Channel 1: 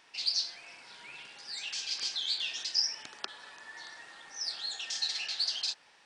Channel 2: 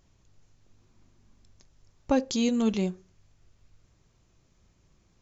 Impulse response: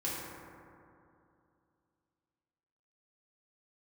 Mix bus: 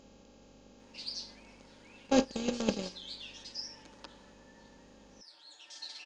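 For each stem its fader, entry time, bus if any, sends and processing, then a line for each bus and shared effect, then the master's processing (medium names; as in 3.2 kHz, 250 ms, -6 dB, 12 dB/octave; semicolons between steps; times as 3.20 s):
4.11 s -7.5 dB -> 4.49 s -15 dB, 0.80 s, no send, comb 6.8 ms, depth 99%; small resonant body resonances 320/550/930 Hz, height 14 dB, ringing for 45 ms; auto duck -8 dB, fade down 1.70 s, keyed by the second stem
+2.5 dB, 0.00 s, no send, spectral levelling over time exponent 0.2; gate -17 dBFS, range -33 dB; hum 50 Hz, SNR 28 dB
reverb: none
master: none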